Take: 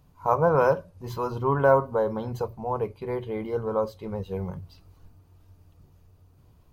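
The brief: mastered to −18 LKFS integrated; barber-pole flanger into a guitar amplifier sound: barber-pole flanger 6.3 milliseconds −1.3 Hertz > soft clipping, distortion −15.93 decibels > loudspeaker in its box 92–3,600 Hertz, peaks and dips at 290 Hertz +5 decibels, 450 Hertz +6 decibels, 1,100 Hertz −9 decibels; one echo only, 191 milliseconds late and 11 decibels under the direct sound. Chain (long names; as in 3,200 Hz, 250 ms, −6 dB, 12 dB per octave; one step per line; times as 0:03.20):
single-tap delay 191 ms −11 dB
barber-pole flanger 6.3 ms −1.3 Hz
soft clipping −16.5 dBFS
loudspeaker in its box 92–3,600 Hz, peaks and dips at 290 Hz +5 dB, 450 Hz +6 dB, 1,100 Hz −9 dB
level +10.5 dB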